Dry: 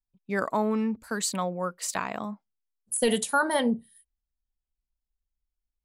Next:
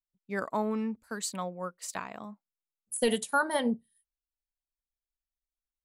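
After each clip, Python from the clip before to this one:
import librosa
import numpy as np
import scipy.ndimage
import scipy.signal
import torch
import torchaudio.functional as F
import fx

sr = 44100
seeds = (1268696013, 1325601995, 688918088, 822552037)

y = fx.upward_expand(x, sr, threshold_db=-43.0, expansion=1.5)
y = F.gain(torch.from_numpy(y), -2.0).numpy()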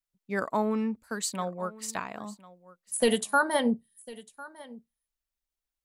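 y = x + 10.0 ** (-20.0 / 20.0) * np.pad(x, (int(1051 * sr / 1000.0), 0))[:len(x)]
y = F.gain(torch.from_numpy(y), 3.0).numpy()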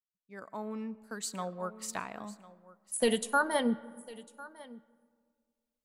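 y = fx.fade_in_head(x, sr, length_s=1.68)
y = fx.rev_freeverb(y, sr, rt60_s=2.0, hf_ratio=0.35, predelay_ms=65, drr_db=19.5)
y = F.gain(torch.from_numpy(y), -3.5).numpy()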